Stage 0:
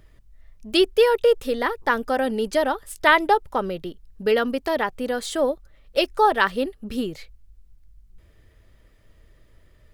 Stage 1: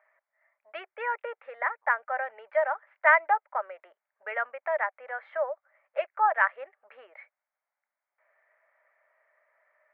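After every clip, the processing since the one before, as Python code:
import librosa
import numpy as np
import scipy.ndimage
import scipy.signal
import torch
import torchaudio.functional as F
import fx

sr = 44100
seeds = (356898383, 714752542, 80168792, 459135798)

y = fx.dynamic_eq(x, sr, hz=870.0, q=1.0, threshold_db=-33.0, ratio=4.0, max_db=-5)
y = scipy.signal.sosfilt(scipy.signal.cheby1(4, 1.0, [600.0, 2200.0], 'bandpass', fs=sr, output='sos'), y)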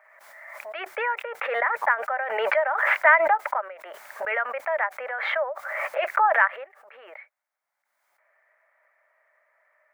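y = fx.low_shelf(x, sr, hz=350.0, db=-9.0)
y = fx.pre_swell(y, sr, db_per_s=33.0)
y = F.gain(torch.from_numpy(y), 3.5).numpy()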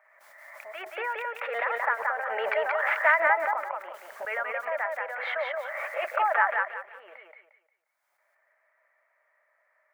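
y = fx.echo_feedback(x, sr, ms=177, feedback_pct=29, wet_db=-3)
y = F.gain(torch.from_numpy(y), -5.5).numpy()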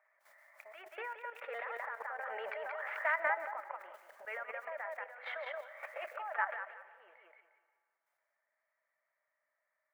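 y = fx.level_steps(x, sr, step_db=11)
y = fx.rev_plate(y, sr, seeds[0], rt60_s=2.4, hf_ratio=0.95, predelay_ms=0, drr_db=16.0)
y = F.gain(torch.from_numpy(y), -8.5).numpy()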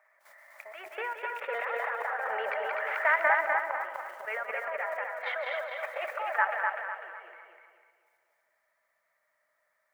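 y = fx.echo_feedback(x, sr, ms=250, feedback_pct=39, wet_db=-4)
y = F.gain(torch.from_numpy(y), 7.5).numpy()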